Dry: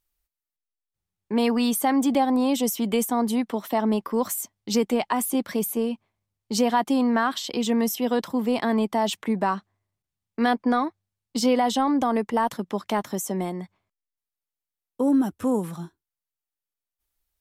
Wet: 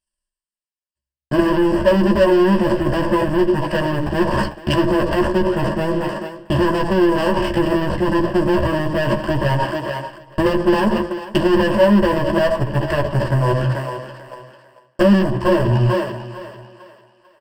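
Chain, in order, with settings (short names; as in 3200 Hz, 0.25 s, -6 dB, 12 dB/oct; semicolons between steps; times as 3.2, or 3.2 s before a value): notches 60/120/180/240 Hz; added harmonics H 4 -22 dB, 8 -9 dB, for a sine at -8.5 dBFS; treble ducked by the level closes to 1200 Hz, closed at -18.5 dBFS; on a send at -14.5 dB: reverb RT60 0.35 s, pre-delay 58 ms; on the sum: pitch shift -6 st; sample leveller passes 5; doubler 14 ms -4 dB; thinning echo 0.446 s, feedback 36%, high-pass 350 Hz, level -14.5 dB; transient shaper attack +10 dB, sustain +6 dB; reverse; compressor 4:1, threshold -18 dBFS, peak gain reduction 15.5 dB; reverse; ripple EQ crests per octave 1.3, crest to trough 15 dB; outdoor echo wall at 130 m, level -29 dB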